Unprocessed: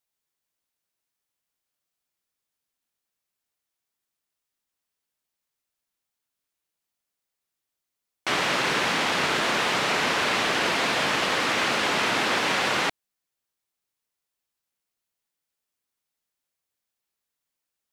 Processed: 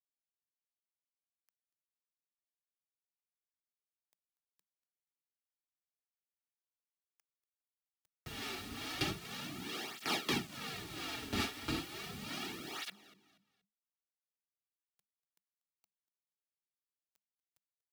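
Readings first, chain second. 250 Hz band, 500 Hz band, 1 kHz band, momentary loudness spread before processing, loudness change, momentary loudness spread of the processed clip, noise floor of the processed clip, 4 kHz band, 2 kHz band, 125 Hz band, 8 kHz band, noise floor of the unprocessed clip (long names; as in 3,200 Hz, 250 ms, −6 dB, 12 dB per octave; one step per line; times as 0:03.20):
−10.5 dB, −18.5 dB, −20.5 dB, 2 LU, −17.0 dB, 8 LU, below −85 dBFS, −15.0 dB, −20.0 dB, −8.0 dB, −14.5 dB, −85 dBFS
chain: lower of the sound and its delayed copy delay 2 ms
noise gate with hold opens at −14 dBFS
octave-band graphic EQ 125/1,000/2,000/8,000 Hz −7/−9/−6/−7 dB
upward compression, threshold −32 dBFS
two-band tremolo in antiphase 2.3 Hz, depth 70%, crossover 490 Hz
bit reduction 9 bits
frequency shifter −210 Hz
on a send: repeating echo 239 ms, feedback 32%, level −19.5 dB
on the sum: through-zero flanger with one copy inverted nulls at 0.35 Hz, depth 6.5 ms
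level +5 dB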